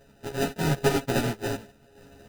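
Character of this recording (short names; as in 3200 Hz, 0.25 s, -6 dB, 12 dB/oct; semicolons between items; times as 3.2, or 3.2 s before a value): a buzz of ramps at a fixed pitch in blocks of 64 samples; random-step tremolo 4.1 Hz, depth 65%; aliases and images of a low sample rate 1100 Hz, jitter 0%; a shimmering, thickened sound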